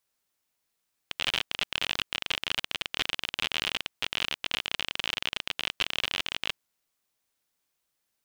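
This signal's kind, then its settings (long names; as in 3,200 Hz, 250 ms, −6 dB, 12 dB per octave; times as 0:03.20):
Geiger counter clicks 45 per second −11.5 dBFS 5.45 s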